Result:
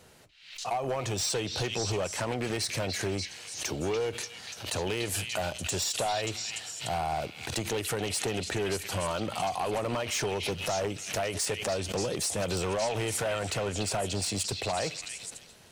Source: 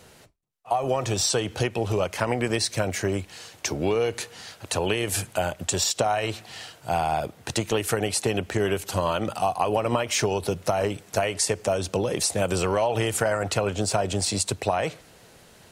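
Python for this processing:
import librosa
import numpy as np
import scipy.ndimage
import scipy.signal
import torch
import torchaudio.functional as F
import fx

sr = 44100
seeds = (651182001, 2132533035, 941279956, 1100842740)

y = np.clip(10.0 ** (20.5 / 20.0) * x, -1.0, 1.0) / 10.0 ** (20.5 / 20.0)
y = fx.echo_stepped(y, sr, ms=291, hz=3100.0, octaves=0.7, feedback_pct=70, wet_db=-1.0)
y = fx.pre_swell(y, sr, db_per_s=89.0)
y = y * librosa.db_to_amplitude(-5.0)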